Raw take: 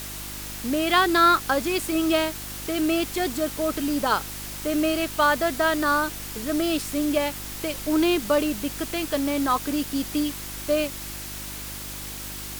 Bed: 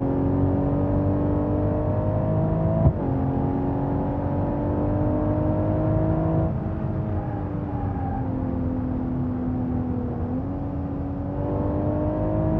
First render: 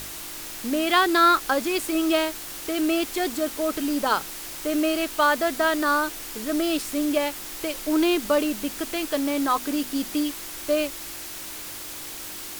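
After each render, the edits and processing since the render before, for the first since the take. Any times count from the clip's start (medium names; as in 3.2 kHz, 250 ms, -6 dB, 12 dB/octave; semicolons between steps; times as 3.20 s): de-hum 50 Hz, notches 5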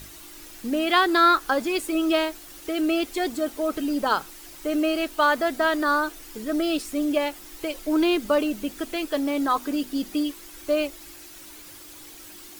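noise reduction 10 dB, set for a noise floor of -37 dBFS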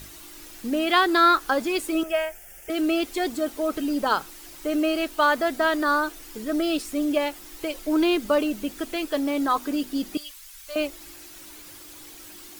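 2.03–2.70 s: static phaser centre 1.1 kHz, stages 6; 10.17–10.76 s: amplifier tone stack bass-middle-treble 10-0-10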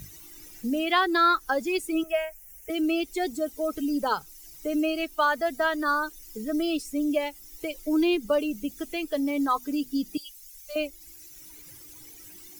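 expander on every frequency bin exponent 1.5; three bands compressed up and down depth 40%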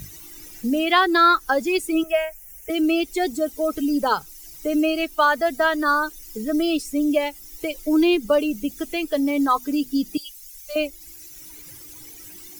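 trim +5.5 dB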